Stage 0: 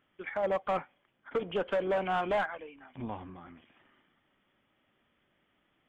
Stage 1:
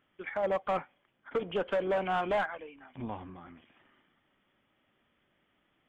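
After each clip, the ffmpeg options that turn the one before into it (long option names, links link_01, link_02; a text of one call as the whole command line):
ffmpeg -i in.wav -af anull out.wav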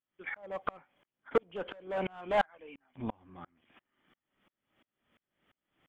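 ffmpeg -i in.wav -af "aeval=exprs='val(0)*pow(10,-35*if(lt(mod(-2.9*n/s,1),2*abs(-2.9)/1000),1-mod(-2.9*n/s,1)/(2*abs(-2.9)/1000),(mod(-2.9*n/s,1)-2*abs(-2.9)/1000)/(1-2*abs(-2.9)/1000))/20)':channel_layout=same,volume=6.5dB" out.wav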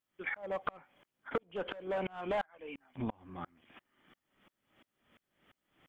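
ffmpeg -i in.wav -af "acompressor=threshold=-38dB:ratio=5,volume=5dB" out.wav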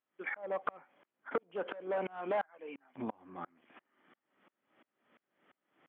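ffmpeg -i in.wav -af "highpass=250,lowpass=2100,volume=1dB" out.wav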